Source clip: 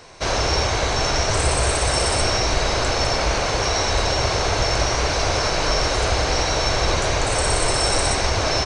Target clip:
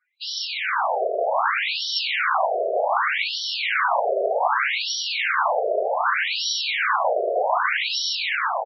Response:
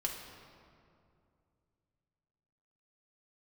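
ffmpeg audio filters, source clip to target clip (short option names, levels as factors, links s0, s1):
-filter_complex "[0:a]afftdn=nr=33:nf=-40,acrossover=split=160|770|3000[s0][s1][s2][s3];[s2]dynaudnorm=f=440:g=3:m=2.82[s4];[s0][s1][s4][s3]amix=inputs=4:normalize=0,asplit=2[s5][s6];[s6]adelay=38,volume=0.398[s7];[s5][s7]amix=inputs=2:normalize=0,asplit=2[s8][s9];[s9]adelay=185,lowpass=f=2100:p=1,volume=0.316,asplit=2[s10][s11];[s11]adelay=185,lowpass=f=2100:p=1,volume=0.29,asplit=2[s12][s13];[s13]adelay=185,lowpass=f=2100:p=1,volume=0.29[s14];[s8][s10][s12][s14]amix=inputs=4:normalize=0,afftfilt=real='re*between(b*sr/1024,490*pow(4200/490,0.5+0.5*sin(2*PI*0.65*pts/sr))/1.41,490*pow(4200/490,0.5+0.5*sin(2*PI*0.65*pts/sr))*1.41)':imag='im*between(b*sr/1024,490*pow(4200/490,0.5+0.5*sin(2*PI*0.65*pts/sr))/1.41,490*pow(4200/490,0.5+0.5*sin(2*PI*0.65*pts/sr))*1.41)':win_size=1024:overlap=0.75"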